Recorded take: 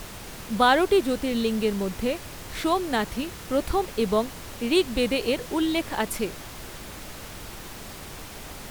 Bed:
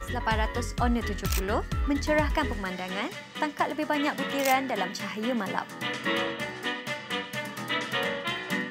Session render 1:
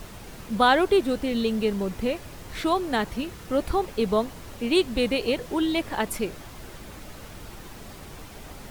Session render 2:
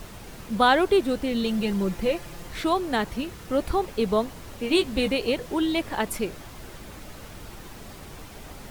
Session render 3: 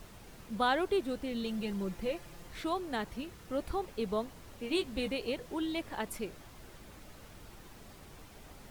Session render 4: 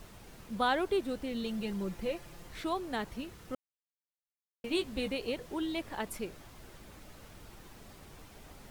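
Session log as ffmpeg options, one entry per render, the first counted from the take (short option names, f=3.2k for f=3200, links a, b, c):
-af "afftdn=nr=6:nf=-41"
-filter_complex "[0:a]asettb=1/sr,asplit=3[a][b][c];[a]atrim=end=1.434[d];[b]atrim=start=1.43:end=2.49,asetpts=PTS-STARTPTS,afade=t=in:d=0.004:c=qsin,afade=t=out:st=1.056:d=0.004:c=qsin,aecho=1:1:5.8:0.66,atrim=end_sample=46746[e];[c]atrim=start=2.486[f];[d][e]acrossfade=d=0.004:c1=hsin:c2=qsin[g];[g][f]acrossfade=d=0.004:c1=qsin:c2=hsin,asettb=1/sr,asplit=3[h][i][j];[h]atrim=end=4.614[k];[i]atrim=start=4.61:end=5.12,asetpts=PTS-STARTPTS,afade=t=in:d=0.004:c=qsin,afade=t=out:st=0.506:d=0.004:c=qsin,asplit=2[l][m];[m]adelay=15,volume=-7dB[n];[l][n]amix=inputs=2:normalize=0,atrim=end_sample=22491[o];[j]atrim=start=5.116[p];[k][o]acrossfade=d=0.004:c1=hsin:c2=qsin[q];[q][p]acrossfade=d=0.004:c1=qsin:c2=hsin"
-af "volume=-10.5dB"
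-filter_complex "[0:a]asplit=3[a][b][c];[a]atrim=end=3.55,asetpts=PTS-STARTPTS,afade=t=out:st=3.546:d=0.004:c=hsin[d];[b]atrim=start=3.55:end=4.64,asetpts=PTS-STARTPTS,volume=0[e];[c]atrim=start=4.64,asetpts=PTS-STARTPTS,afade=t=in:d=0.004:c=hsin[f];[d][e][f]concat=n=3:v=0:a=1"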